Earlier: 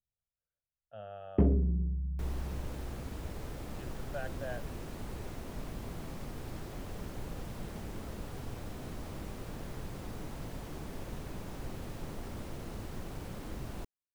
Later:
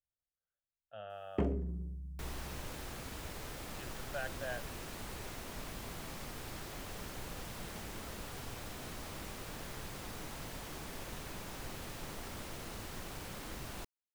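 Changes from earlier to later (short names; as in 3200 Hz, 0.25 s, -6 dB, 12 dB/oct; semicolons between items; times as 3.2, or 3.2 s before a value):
first sound: add tone controls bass -4 dB, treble +12 dB; master: add tilt shelf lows -6 dB, about 790 Hz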